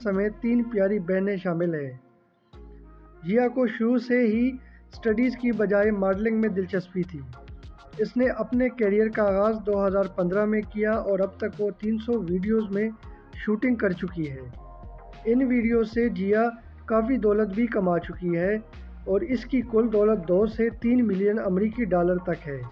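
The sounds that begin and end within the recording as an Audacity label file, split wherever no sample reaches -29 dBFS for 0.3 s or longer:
3.270000	4.560000	sound
5.050000	7.200000	sound
7.990000	12.900000	sound
13.400000	14.370000	sound
15.260000	16.500000	sound
16.880000	18.590000	sound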